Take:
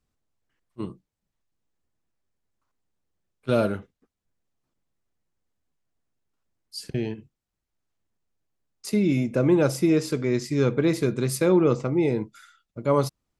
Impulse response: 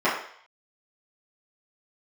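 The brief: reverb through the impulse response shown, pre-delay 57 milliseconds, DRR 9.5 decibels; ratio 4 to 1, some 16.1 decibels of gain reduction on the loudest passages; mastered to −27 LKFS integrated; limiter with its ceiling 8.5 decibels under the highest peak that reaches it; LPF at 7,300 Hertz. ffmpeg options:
-filter_complex "[0:a]lowpass=7300,acompressor=threshold=-36dB:ratio=4,alimiter=level_in=5.5dB:limit=-24dB:level=0:latency=1,volume=-5.5dB,asplit=2[link_01][link_02];[1:a]atrim=start_sample=2205,adelay=57[link_03];[link_02][link_03]afir=irnorm=-1:irlink=0,volume=-27dB[link_04];[link_01][link_04]amix=inputs=2:normalize=0,volume=13.5dB"

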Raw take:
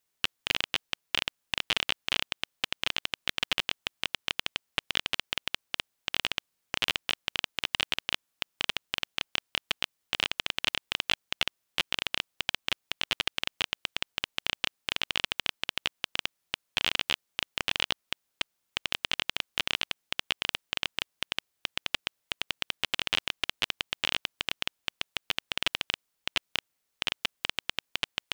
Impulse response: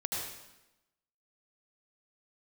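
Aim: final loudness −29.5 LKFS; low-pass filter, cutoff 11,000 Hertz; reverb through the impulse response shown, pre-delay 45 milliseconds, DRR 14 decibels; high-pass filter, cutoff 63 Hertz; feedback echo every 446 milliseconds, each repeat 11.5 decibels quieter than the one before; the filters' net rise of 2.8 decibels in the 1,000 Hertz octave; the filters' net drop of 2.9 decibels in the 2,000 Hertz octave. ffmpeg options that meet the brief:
-filter_complex "[0:a]highpass=63,lowpass=11000,equalizer=frequency=1000:width_type=o:gain=5,equalizer=frequency=2000:width_type=o:gain=-5,aecho=1:1:446|892|1338:0.266|0.0718|0.0194,asplit=2[link_01][link_02];[1:a]atrim=start_sample=2205,adelay=45[link_03];[link_02][link_03]afir=irnorm=-1:irlink=0,volume=-18dB[link_04];[link_01][link_04]amix=inputs=2:normalize=0,volume=3dB"

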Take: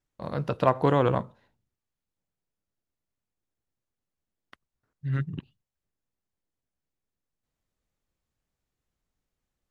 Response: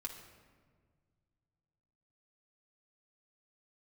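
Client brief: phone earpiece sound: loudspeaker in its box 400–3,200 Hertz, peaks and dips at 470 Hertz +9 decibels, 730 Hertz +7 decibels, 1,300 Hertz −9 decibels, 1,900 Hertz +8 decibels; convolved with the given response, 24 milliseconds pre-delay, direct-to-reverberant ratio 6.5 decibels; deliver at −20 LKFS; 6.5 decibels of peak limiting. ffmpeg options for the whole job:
-filter_complex "[0:a]alimiter=limit=-13.5dB:level=0:latency=1,asplit=2[link_01][link_02];[1:a]atrim=start_sample=2205,adelay=24[link_03];[link_02][link_03]afir=irnorm=-1:irlink=0,volume=-4.5dB[link_04];[link_01][link_04]amix=inputs=2:normalize=0,highpass=400,equalizer=frequency=470:width_type=q:width=4:gain=9,equalizer=frequency=730:width_type=q:width=4:gain=7,equalizer=frequency=1300:width_type=q:width=4:gain=-9,equalizer=frequency=1900:width_type=q:width=4:gain=8,lowpass=frequency=3200:width=0.5412,lowpass=frequency=3200:width=1.3066,volume=6.5dB"

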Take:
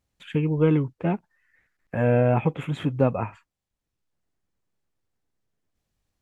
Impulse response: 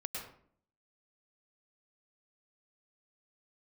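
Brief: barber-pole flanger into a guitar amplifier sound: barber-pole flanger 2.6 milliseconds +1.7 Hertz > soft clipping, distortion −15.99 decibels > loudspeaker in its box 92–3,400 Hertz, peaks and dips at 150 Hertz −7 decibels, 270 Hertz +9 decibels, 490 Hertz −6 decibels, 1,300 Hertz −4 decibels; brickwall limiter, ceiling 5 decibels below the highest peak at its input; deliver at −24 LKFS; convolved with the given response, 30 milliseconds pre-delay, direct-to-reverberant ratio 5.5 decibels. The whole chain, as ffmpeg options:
-filter_complex "[0:a]alimiter=limit=-13dB:level=0:latency=1,asplit=2[link_01][link_02];[1:a]atrim=start_sample=2205,adelay=30[link_03];[link_02][link_03]afir=irnorm=-1:irlink=0,volume=-6dB[link_04];[link_01][link_04]amix=inputs=2:normalize=0,asplit=2[link_05][link_06];[link_06]adelay=2.6,afreqshift=1.7[link_07];[link_05][link_07]amix=inputs=2:normalize=1,asoftclip=threshold=-20dB,highpass=92,equalizer=frequency=150:width_type=q:width=4:gain=-7,equalizer=frequency=270:width_type=q:width=4:gain=9,equalizer=frequency=490:width_type=q:width=4:gain=-6,equalizer=frequency=1300:width_type=q:width=4:gain=-4,lowpass=frequency=3400:width=0.5412,lowpass=frequency=3400:width=1.3066,volume=6dB"

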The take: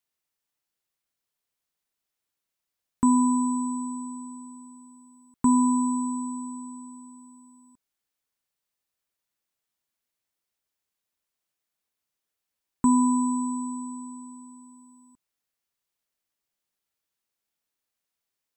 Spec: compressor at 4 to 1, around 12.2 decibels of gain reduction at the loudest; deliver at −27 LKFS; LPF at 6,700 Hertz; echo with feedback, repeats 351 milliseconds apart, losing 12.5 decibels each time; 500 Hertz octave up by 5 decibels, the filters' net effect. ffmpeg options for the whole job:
ffmpeg -i in.wav -af "lowpass=6700,equalizer=frequency=500:width_type=o:gain=8.5,acompressor=threshold=-30dB:ratio=4,aecho=1:1:351|702|1053:0.237|0.0569|0.0137,volume=6.5dB" out.wav

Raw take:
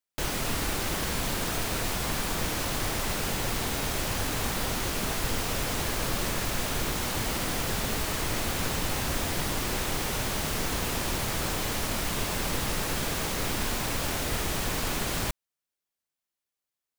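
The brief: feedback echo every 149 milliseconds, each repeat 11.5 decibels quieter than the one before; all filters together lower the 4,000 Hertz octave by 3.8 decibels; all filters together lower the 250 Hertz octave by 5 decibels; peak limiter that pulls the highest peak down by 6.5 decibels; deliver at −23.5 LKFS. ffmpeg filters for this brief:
ffmpeg -i in.wav -af "equalizer=frequency=250:width_type=o:gain=-7,equalizer=frequency=4000:width_type=o:gain=-5,alimiter=limit=-23dB:level=0:latency=1,aecho=1:1:149|298|447:0.266|0.0718|0.0194,volume=9dB" out.wav

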